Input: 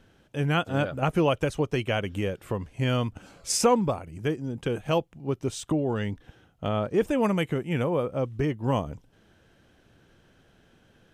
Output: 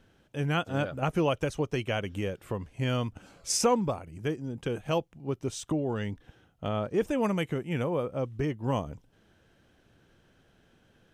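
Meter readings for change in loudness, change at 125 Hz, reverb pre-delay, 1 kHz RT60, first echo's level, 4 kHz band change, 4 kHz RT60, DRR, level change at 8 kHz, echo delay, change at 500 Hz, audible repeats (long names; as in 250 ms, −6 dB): −3.5 dB, −3.5 dB, no reverb audible, no reverb audible, no echo audible, −3.0 dB, no reverb audible, no reverb audible, −1.5 dB, no echo audible, −3.5 dB, no echo audible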